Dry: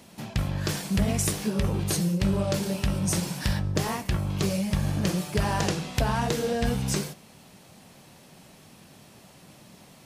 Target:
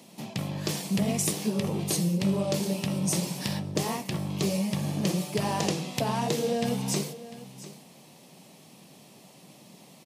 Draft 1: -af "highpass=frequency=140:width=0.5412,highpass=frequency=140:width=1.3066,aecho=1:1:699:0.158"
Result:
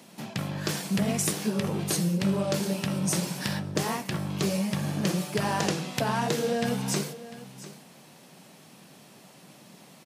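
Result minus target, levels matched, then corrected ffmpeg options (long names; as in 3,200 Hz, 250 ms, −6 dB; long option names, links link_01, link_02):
2,000 Hz band +4.0 dB
-af "highpass=frequency=140:width=0.5412,highpass=frequency=140:width=1.3066,equalizer=frequency=1500:width=2.6:gain=-10.5,aecho=1:1:699:0.158"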